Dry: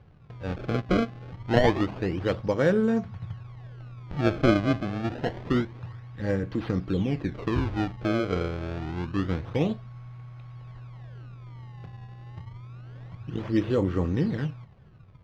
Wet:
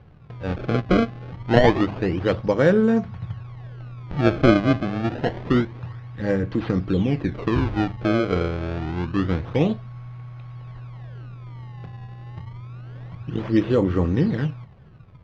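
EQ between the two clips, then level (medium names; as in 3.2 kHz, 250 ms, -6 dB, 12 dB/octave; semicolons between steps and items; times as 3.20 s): distance through air 56 m; hum notches 50/100 Hz; +5.5 dB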